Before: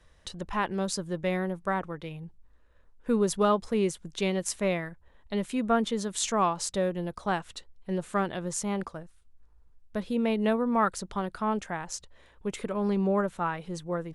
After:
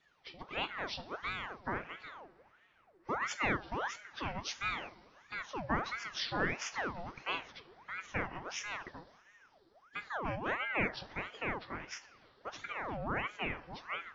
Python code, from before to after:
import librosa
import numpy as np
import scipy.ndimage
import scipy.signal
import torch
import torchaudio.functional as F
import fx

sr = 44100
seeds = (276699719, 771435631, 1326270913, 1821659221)

y = fx.freq_compress(x, sr, knee_hz=1300.0, ratio=1.5)
y = fx.low_shelf(y, sr, hz=350.0, db=-7.5)
y = fx.rev_double_slope(y, sr, seeds[0], early_s=0.43, late_s=4.0, knee_db=-19, drr_db=10.0)
y = fx.ring_lfo(y, sr, carrier_hz=1100.0, swing_pct=70, hz=1.5)
y = y * librosa.db_to_amplitude(-4.0)